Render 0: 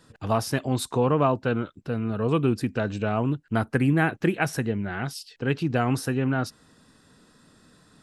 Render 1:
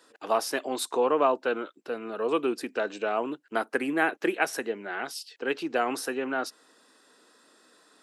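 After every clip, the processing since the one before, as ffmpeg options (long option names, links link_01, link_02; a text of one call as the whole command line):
ffmpeg -i in.wav -af "highpass=frequency=330:width=0.5412,highpass=frequency=330:width=1.3066" out.wav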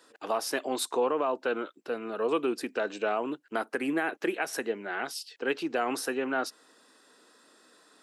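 ffmpeg -i in.wav -af "alimiter=limit=-18dB:level=0:latency=1:release=106" out.wav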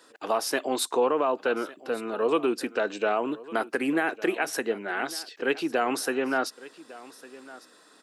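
ffmpeg -i in.wav -af "aecho=1:1:1154:0.112,volume=3.5dB" out.wav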